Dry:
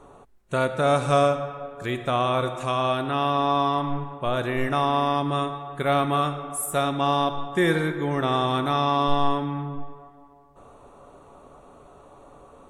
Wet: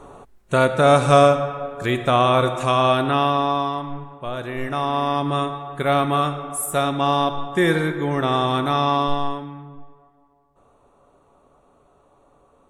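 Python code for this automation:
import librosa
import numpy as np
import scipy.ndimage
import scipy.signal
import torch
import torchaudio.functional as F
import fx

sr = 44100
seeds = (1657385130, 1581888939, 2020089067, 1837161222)

y = fx.gain(x, sr, db=fx.line((3.1, 6.5), (3.86, -3.5), (4.41, -3.5), (5.31, 3.0), (8.94, 3.0), (9.59, -8.0)))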